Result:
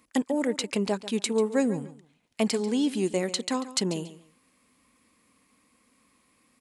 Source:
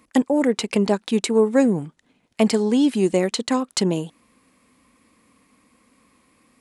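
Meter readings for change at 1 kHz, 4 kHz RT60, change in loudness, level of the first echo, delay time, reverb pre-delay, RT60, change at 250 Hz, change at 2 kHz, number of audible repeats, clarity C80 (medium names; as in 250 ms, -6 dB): -7.0 dB, no reverb, -7.0 dB, -15.0 dB, 141 ms, no reverb, no reverb, -8.0 dB, -5.5 dB, 2, no reverb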